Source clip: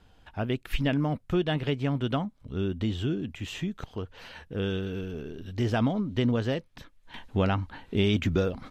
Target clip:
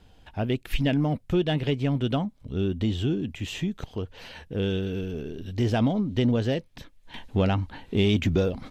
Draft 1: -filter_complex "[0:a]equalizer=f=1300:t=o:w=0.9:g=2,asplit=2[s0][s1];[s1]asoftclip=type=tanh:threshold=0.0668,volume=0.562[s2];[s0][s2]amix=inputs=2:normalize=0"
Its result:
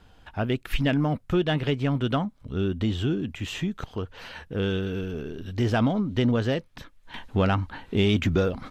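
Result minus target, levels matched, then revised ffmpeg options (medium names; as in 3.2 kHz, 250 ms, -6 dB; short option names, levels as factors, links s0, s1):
1 kHz band +3.0 dB
-filter_complex "[0:a]equalizer=f=1300:t=o:w=0.9:g=-6,asplit=2[s0][s1];[s1]asoftclip=type=tanh:threshold=0.0668,volume=0.562[s2];[s0][s2]amix=inputs=2:normalize=0"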